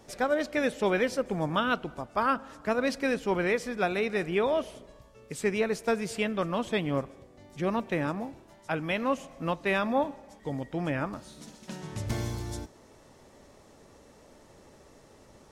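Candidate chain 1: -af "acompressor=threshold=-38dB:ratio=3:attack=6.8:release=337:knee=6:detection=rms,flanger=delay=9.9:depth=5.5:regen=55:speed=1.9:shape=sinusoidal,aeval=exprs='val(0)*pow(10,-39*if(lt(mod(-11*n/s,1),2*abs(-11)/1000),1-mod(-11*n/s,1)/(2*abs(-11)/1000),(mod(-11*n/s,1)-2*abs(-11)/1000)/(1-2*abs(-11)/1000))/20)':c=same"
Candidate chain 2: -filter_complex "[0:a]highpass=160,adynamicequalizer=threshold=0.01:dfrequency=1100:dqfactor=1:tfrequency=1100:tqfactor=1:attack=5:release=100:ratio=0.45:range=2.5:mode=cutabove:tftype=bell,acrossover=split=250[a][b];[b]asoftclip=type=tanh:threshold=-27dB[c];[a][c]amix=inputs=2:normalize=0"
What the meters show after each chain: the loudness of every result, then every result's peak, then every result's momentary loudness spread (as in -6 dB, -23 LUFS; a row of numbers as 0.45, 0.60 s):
-55.0, -34.0 LUFS; -31.5, -22.5 dBFS; 17, 12 LU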